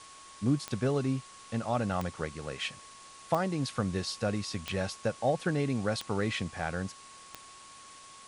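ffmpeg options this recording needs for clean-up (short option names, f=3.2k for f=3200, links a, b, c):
-af "adeclick=t=4,bandreject=f=1.1k:w=30,afftdn=nr=26:nf=-51"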